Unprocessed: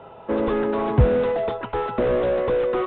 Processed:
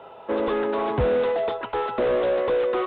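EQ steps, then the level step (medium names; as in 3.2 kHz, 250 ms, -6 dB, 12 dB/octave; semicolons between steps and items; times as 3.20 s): tone controls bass -11 dB, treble +8 dB; 0.0 dB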